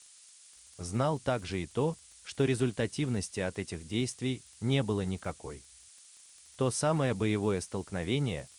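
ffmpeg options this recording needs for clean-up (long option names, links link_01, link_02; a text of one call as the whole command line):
ffmpeg -i in.wav -af "adeclick=threshold=4,afftdn=noise_reduction=21:noise_floor=-56" out.wav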